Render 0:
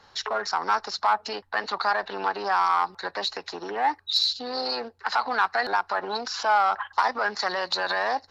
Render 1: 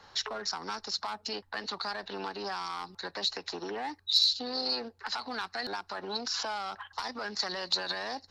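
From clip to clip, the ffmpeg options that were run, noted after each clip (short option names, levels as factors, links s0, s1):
-filter_complex "[0:a]acrossover=split=330|3000[s0][s1][s2];[s1]acompressor=threshold=0.01:ratio=4[s3];[s0][s3][s2]amix=inputs=3:normalize=0"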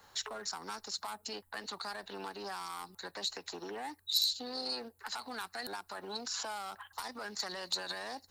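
-af "aexciter=amount=11.9:drive=3.5:freq=7600,volume=0.531"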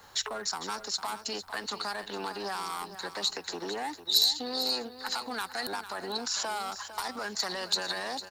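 -af "aecho=1:1:452|904|1356:0.251|0.0628|0.0157,volume=2.11"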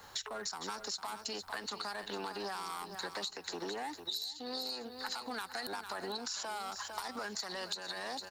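-af "acompressor=threshold=0.0158:ratio=16"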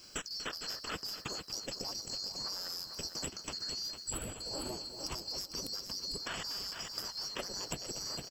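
-af "afftfilt=real='real(if(lt(b,736),b+184*(1-2*mod(floor(b/184),2)),b),0)':imag='imag(if(lt(b,736),b+184*(1-2*mod(floor(b/184),2)),b),0)':win_size=2048:overlap=0.75,aecho=1:1:241:0.224"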